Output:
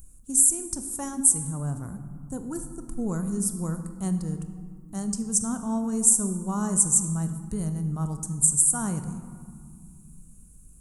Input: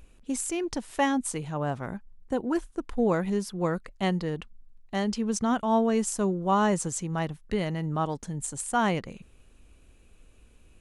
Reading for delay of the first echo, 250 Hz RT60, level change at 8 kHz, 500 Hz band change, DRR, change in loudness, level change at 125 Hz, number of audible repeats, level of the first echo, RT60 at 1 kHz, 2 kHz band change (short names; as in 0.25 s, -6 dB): none, 3.4 s, +14.5 dB, -10.0 dB, 8.0 dB, +4.5 dB, +3.0 dB, none, none, 2.0 s, -12.5 dB